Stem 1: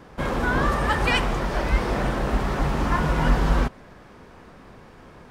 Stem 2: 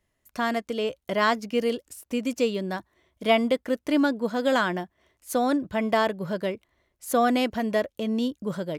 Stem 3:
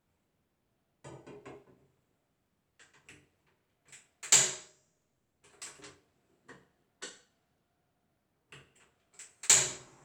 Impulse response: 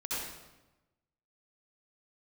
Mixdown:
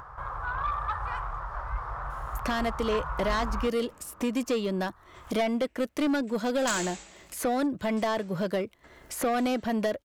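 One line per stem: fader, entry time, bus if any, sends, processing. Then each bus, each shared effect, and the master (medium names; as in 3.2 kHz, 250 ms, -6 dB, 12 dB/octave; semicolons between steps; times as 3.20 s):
-10.5 dB, 0.00 s, no send, FFT filter 110 Hz 0 dB, 240 Hz -28 dB, 1.2 kHz +10 dB, 2.5 kHz -16 dB
-0.5 dB, 2.10 s, no send, three bands compressed up and down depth 70%
-4.5 dB, 2.35 s, send -5.5 dB, low-pass 7.1 kHz; ring modulator 190 Hz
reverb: on, RT60 1.0 s, pre-delay 59 ms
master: upward compressor, threshold -34 dBFS; saturation -21 dBFS, distortion -12 dB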